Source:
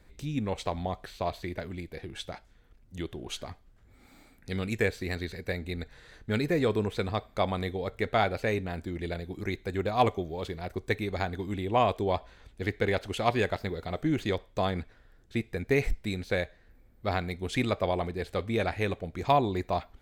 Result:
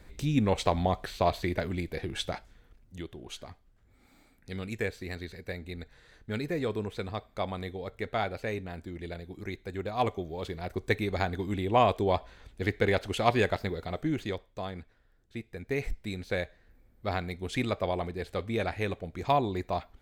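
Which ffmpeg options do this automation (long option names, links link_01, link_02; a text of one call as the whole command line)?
ffmpeg -i in.wav -af "volume=18.5dB,afade=type=out:start_time=2.31:duration=0.74:silence=0.298538,afade=type=in:start_time=9.93:duration=0.99:silence=0.473151,afade=type=out:start_time=13.54:duration=1.04:silence=0.316228,afade=type=in:start_time=15.47:duration=0.94:silence=0.473151" out.wav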